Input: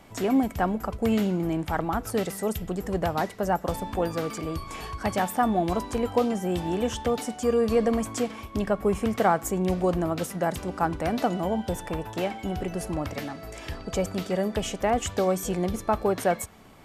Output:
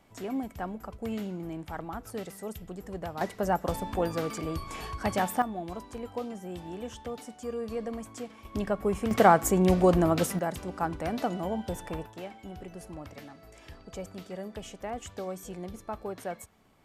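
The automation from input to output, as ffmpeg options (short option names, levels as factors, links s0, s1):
-af "asetnsamples=n=441:p=0,asendcmd='3.21 volume volume -2dB;5.42 volume volume -12dB;8.45 volume volume -4dB;9.11 volume volume 3dB;10.39 volume volume -5dB;12.06 volume volume -12.5dB',volume=0.299"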